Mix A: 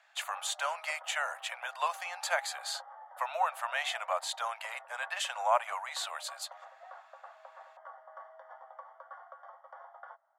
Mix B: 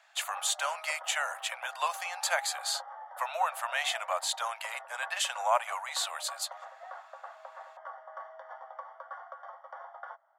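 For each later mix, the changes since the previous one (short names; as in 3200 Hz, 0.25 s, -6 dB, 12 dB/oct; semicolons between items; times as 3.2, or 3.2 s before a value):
background +4.5 dB; master: add high shelf 3500 Hz +7.5 dB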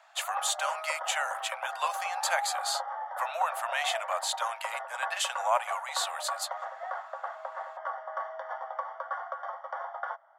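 background +8.5 dB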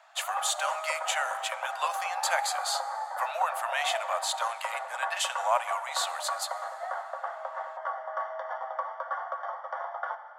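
reverb: on, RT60 2.8 s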